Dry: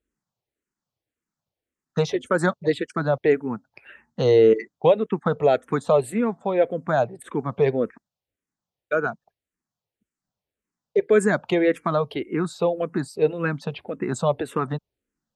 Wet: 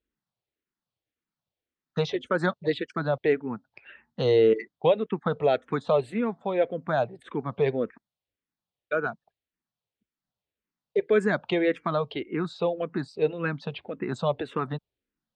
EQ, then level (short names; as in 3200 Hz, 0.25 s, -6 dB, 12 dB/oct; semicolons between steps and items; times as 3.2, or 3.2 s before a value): synth low-pass 3800 Hz, resonance Q 1.6; -4.5 dB